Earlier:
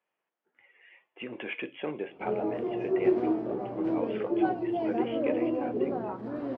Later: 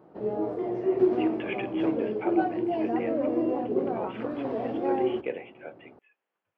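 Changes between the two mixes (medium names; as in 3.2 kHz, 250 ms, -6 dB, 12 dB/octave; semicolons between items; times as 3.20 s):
background: entry -2.05 s; reverb: on, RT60 2.3 s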